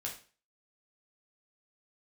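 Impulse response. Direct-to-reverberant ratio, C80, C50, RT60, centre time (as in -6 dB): -2.0 dB, 13.5 dB, 8.0 dB, 0.40 s, 22 ms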